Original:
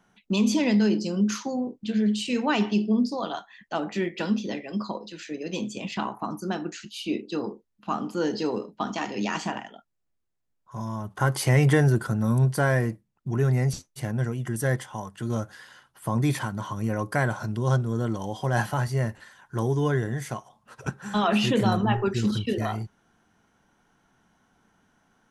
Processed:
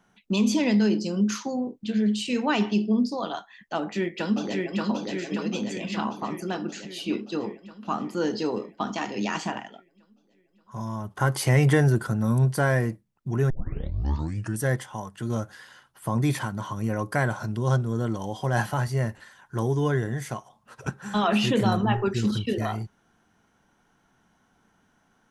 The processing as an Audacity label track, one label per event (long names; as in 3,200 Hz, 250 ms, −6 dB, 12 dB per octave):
3.780000	4.830000	delay throw 580 ms, feedback 65%, level −2 dB
13.500000	13.500000	tape start 1.09 s